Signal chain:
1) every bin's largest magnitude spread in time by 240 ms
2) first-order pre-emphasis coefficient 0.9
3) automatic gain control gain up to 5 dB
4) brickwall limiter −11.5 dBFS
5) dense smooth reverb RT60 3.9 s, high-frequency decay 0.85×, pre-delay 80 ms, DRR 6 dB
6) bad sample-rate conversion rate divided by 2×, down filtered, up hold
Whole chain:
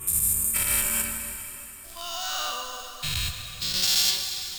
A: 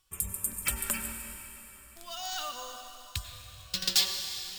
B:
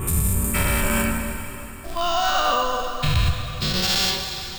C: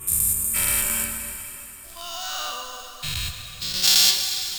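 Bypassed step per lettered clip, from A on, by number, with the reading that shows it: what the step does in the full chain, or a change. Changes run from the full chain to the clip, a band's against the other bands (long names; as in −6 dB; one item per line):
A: 1, 8 kHz band −3.5 dB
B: 2, 8 kHz band −17.5 dB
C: 4, change in crest factor +2.5 dB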